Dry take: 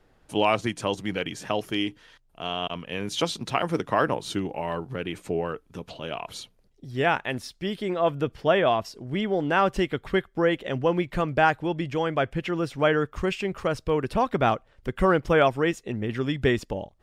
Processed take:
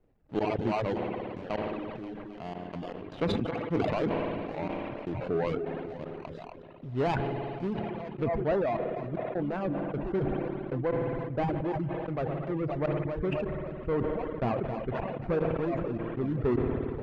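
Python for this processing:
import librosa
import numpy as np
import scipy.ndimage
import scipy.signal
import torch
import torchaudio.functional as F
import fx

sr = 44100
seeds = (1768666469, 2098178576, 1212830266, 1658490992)

y = scipy.signal.medfilt(x, 41)
y = fx.rider(y, sr, range_db=3, speed_s=2.0)
y = fx.echo_feedback(y, sr, ms=266, feedback_pct=49, wet_db=-10.5)
y = fx.step_gate(y, sr, bpm=77, pattern='xx.xx..x..xxx.x.', floor_db=-24.0, edge_ms=4.5)
y = fx.rev_spring(y, sr, rt60_s=3.8, pass_ms=(56,), chirp_ms=20, drr_db=9.5)
y = fx.leveller(y, sr, passes=1)
y = fx.lowpass(y, sr, hz=fx.steps((0.0, 3200.0), (8.24, 1900.0)), slope=12)
y = fx.dereverb_blind(y, sr, rt60_s=0.74)
y = fx.sustainer(y, sr, db_per_s=22.0)
y = y * 10.0 ** (-6.5 / 20.0)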